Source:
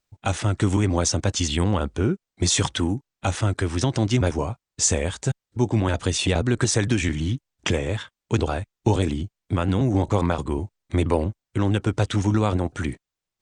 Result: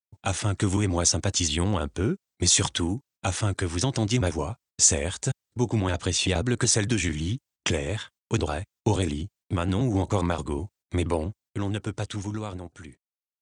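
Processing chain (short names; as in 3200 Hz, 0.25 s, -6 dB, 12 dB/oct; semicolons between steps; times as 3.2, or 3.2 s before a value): ending faded out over 2.64 s; 5.84–6.31 LPF 8000 Hz 12 dB/oct; gate -50 dBFS, range -26 dB; HPF 51 Hz; high shelf 4200 Hz +8 dB; gain -3.5 dB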